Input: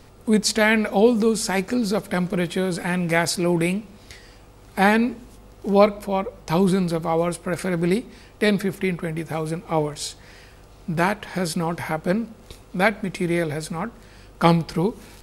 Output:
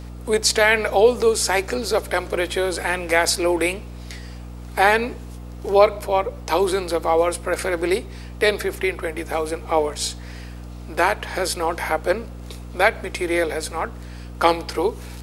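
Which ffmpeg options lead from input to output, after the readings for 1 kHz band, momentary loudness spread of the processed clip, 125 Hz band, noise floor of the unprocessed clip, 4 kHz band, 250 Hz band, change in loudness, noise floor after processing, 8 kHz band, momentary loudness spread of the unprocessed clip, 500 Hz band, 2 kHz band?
+3.5 dB, 19 LU, -7.0 dB, -48 dBFS, +4.0 dB, -6.0 dB, +1.5 dB, -36 dBFS, +4.5 dB, 10 LU, +3.0 dB, +3.5 dB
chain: -filter_complex "[0:a]highpass=f=360:w=0.5412,highpass=f=360:w=1.3066,asplit=2[a][b];[b]alimiter=limit=-12dB:level=0:latency=1:release=93,volume=-0.5dB[c];[a][c]amix=inputs=2:normalize=0,aeval=exprs='val(0)+0.0224*(sin(2*PI*60*n/s)+sin(2*PI*2*60*n/s)/2+sin(2*PI*3*60*n/s)/3+sin(2*PI*4*60*n/s)/4+sin(2*PI*5*60*n/s)/5)':c=same,volume=-1dB"

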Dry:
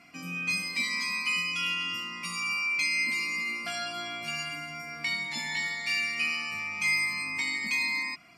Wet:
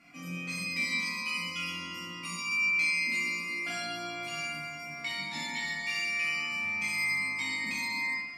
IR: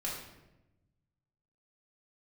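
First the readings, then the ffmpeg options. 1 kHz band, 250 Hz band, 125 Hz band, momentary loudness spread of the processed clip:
-1.5 dB, +1.0 dB, +1.0 dB, 11 LU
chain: -filter_complex "[1:a]atrim=start_sample=2205[a];[0:a][a]afir=irnorm=-1:irlink=0,volume=-3dB"

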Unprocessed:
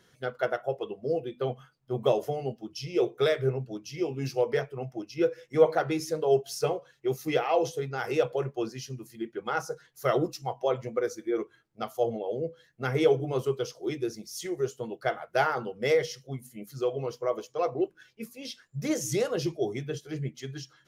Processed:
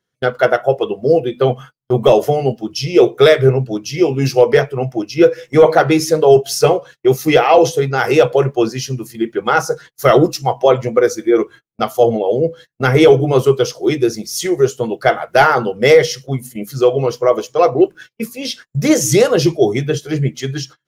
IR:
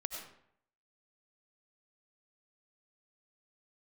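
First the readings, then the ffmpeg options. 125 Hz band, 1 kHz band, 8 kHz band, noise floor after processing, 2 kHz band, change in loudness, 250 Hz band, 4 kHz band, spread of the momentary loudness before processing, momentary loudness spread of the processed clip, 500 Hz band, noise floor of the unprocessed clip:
+16.5 dB, +16.0 dB, +16.5 dB, -68 dBFS, +16.0 dB, +15.5 dB, +16.5 dB, +16.0 dB, 12 LU, 11 LU, +15.5 dB, -65 dBFS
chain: -af "apsyclip=18dB,agate=range=-31dB:threshold=-32dB:ratio=16:detection=peak,volume=-1.5dB"

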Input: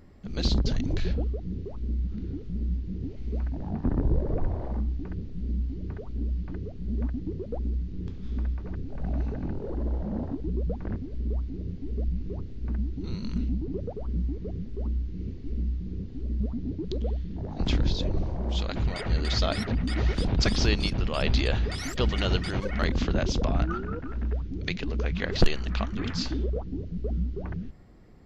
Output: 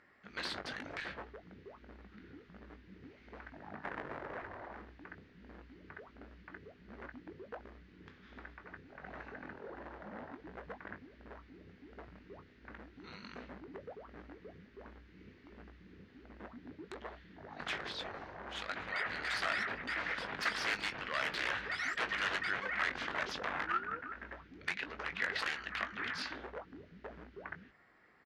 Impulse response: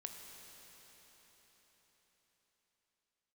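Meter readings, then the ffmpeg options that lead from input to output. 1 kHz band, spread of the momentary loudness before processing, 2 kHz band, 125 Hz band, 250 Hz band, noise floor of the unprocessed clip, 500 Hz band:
-2.0 dB, 9 LU, +2.0 dB, -28.0 dB, -19.5 dB, -38 dBFS, -13.0 dB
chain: -filter_complex "[0:a]aeval=exprs='0.0668*(abs(mod(val(0)/0.0668+3,4)-2)-1)':c=same,bandpass=f=1.7k:t=q:w=2.2:csg=0,asplit=2[a][b];[b]adelay=20,volume=-9.5dB[c];[a][c]amix=inputs=2:normalize=0,volume=5.5dB"

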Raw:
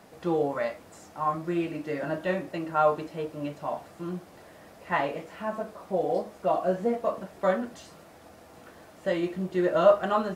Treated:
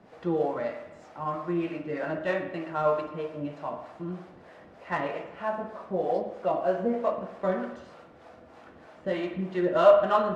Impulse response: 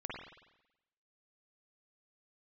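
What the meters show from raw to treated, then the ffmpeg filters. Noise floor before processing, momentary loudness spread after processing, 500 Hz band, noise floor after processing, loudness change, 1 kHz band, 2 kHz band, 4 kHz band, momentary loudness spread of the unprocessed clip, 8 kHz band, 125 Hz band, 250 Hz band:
-52 dBFS, 15 LU, +0.5 dB, -52 dBFS, 0.0 dB, -1.0 dB, -1.0 dB, -1.0 dB, 12 LU, n/a, -1.0 dB, -1.0 dB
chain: -filter_complex "[0:a]adynamicsmooth=sensitivity=3.5:basefreq=3.8k,acrossover=split=440[a][b];[a]aeval=exprs='val(0)*(1-0.7/2+0.7/2*cos(2*PI*3.2*n/s))':c=same[c];[b]aeval=exprs='val(0)*(1-0.7/2-0.7/2*cos(2*PI*3.2*n/s))':c=same[d];[c][d]amix=inputs=2:normalize=0,asplit=2[e][f];[1:a]atrim=start_sample=2205,lowshelf=f=240:g=-10.5[g];[f][g]afir=irnorm=-1:irlink=0,volume=-1.5dB[h];[e][h]amix=inputs=2:normalize=0"

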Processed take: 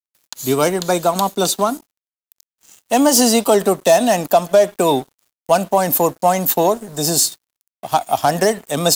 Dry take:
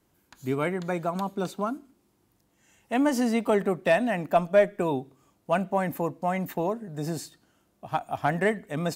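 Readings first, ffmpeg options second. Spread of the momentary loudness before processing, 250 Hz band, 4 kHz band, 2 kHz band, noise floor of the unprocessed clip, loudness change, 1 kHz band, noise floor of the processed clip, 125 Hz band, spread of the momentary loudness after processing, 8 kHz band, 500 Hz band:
10 LU, +8.0 dB, +20.0 dB, +5.0 dB, -69 dBFS, +11.0 dB, +12.0 dB, under -85 dBFS, +6.5 dB, 7 LU, +25.5 dB, +10.5 dB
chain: -filter_complex "[0:a]acrossover=split=270|1300[a][b][c];[c]asoftclip=type=tanh:threshold=-34dB[d];[a][b][d]amix=inputs=3:normalize=0,alimiter=limit=-17dB:level=0:latency=1:release=127,highpass=41,equalizer=f=750:w=0.5:g=9,aexciter=amount=10.2:drive=4:freq=3.1k,aeval=exprs='sgn(val(0))*max(abs(val(0))-0.00708,0)':c=same,volume=6dB"

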